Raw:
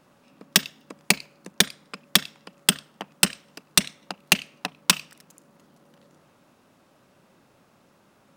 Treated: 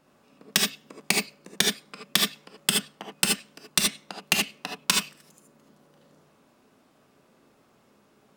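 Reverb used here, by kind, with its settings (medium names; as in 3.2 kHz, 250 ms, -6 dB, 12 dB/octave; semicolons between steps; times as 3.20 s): gated-style reverb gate 100 ms rising, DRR 0 dB; trim -5 dB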